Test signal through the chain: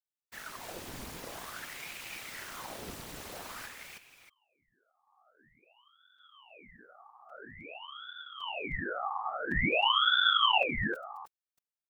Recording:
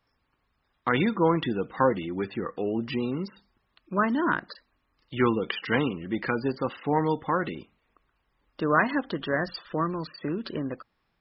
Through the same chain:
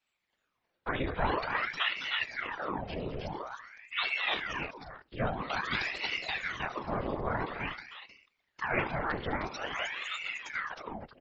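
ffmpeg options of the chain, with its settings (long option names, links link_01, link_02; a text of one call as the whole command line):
ffmpeg -i in.wav -af "aecho=1:1:75|208|311|625:0.2|0.282|0.708|0.211,afftfilt=real='hypot(re,im)*cos(2*PI*random(0))':imag='hypot(re,im)*sin(2*PI*random(1))':win_size=512:overlap=0.75,aeval=exprs='val(0)*sin(2*PI*1300*n/s+1300*0.9/0.49*sin(2*PI*0.49*n/s))':channel_layout=same" out.wav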